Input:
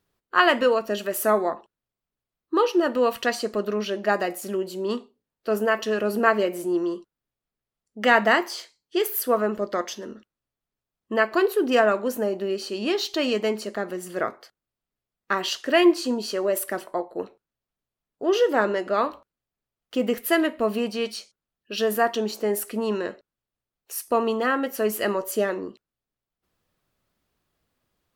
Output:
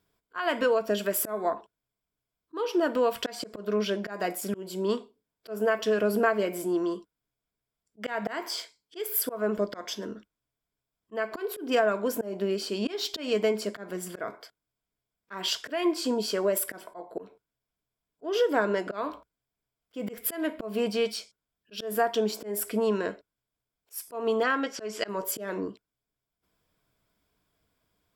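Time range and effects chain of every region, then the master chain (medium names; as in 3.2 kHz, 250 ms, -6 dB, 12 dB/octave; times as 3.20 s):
24.43–25.09 s: Chebyshev low-pass 6 kHz, order 3 + tilt EQ +2 dB/octave
whole clip: rippled EQ curve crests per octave 1.7, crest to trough 7 dB; compression 4:1, threshold -21 dBFS; slow attack 192 ms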